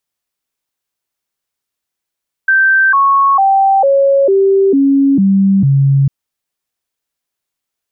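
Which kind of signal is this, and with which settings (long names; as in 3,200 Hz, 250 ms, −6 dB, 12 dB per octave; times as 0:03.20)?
stepped sweep 1,560 Hz down, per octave 2, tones 8, 0.45 s, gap 0.00 s −6.5 dBFS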